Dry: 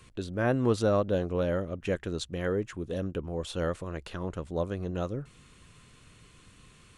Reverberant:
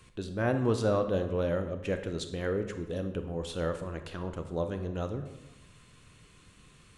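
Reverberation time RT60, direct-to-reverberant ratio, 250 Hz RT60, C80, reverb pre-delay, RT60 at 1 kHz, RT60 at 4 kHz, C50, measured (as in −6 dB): 1.0 s, 7.5 dB, 1.0 s, 12.0 dB, 26 ms, 0.95 s, 0.65 s, 9.5 dB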